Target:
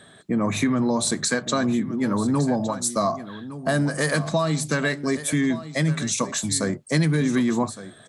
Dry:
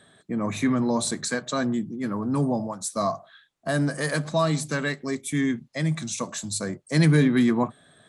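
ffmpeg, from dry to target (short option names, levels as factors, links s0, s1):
-filter_complex "[0:a]acompressor=threshold=0.0562:ratio=6,asplit=2[s0][s1];[s1]aecho=0:1:1162:0.2[s2];[s0][s2]amix=inputs=2:normalize=0,volume=2.11"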